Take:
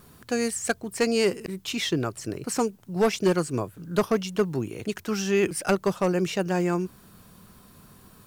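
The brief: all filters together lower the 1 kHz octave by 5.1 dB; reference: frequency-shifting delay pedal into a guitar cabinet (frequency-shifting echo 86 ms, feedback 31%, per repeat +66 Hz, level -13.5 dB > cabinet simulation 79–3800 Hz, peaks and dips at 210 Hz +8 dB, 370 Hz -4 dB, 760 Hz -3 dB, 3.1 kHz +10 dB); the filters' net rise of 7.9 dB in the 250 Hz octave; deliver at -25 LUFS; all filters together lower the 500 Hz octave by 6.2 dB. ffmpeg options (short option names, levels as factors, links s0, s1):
-filter_complex "[0:a]equalizer=f=250:t=o:g=6.5,equalizer=f=500:t=o:g=-7.5,equalizer=f=1000:t=o:g=-3.5,asplit=4[s0][s1][s2][s3];[s1]adelay=86,afreqshift=66,volume=0.211[s4];[s2]adelay=172,afreqshift=132,volume=0.0653[s5];[s3]adelay=258,afreqshift=198,volume=0.0204[s6];[s0][s4][s5][s6]amix=inputs=4:normalize=0,highpass=79,equalizer=f=210:t=q:w=4:g=8,equalizer=f=370:t=q:w=4:g=-4,equalizer=f=760:t=q:w=4:g=-3,equalizer=f=3100:t=q:w=4:g=10,lowpass=f=3800:w=0.5412,lowpass=f=3800:w=1.3066,volume=0.794"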